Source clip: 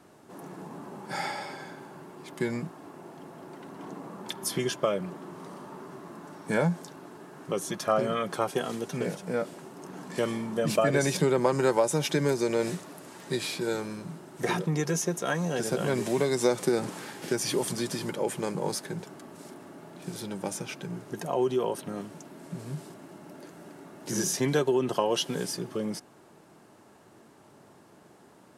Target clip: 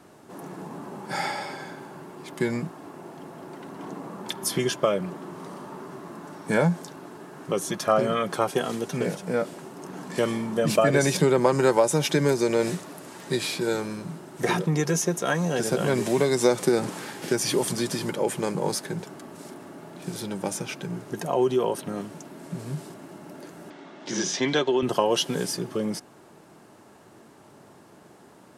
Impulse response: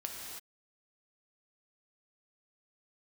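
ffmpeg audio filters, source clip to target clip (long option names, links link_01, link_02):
-filter_complex "[0:a]asettb=1/sr,asplit=3[link_01][link_02][link_03];[link_01]atrim=end=23.704[link_04];[link_02]atrim=start=23.7:end=24.83,asetpts=PTS-STARTPTS,afade=type=in:duration=0.004:curve=qsin,afade=type=out:start_time=1.126:duration=0.004:curve=qsin,highpass=220,equalizer=frequency=440:width_type=q:width=4:gain=-4,equalizer=frequency=2100:width_type=q:width=4:gain=4,equalizer=frequency=3400:width_type=q:width=4:gain=8,lowpass=frequency=6100:width=0.5412,lowpass=frequency=6100:width=1.3066[link_05];[link_03]atrim=start=24.826[link_06];[link_04][link_05]acrossfade=duration=0.004:curve1=hsin:curve2=qsin[link_07];[link_07][link_06]acrossfade=duration=0.004:curve1=qsin:curve2=hsin,volume=4dB"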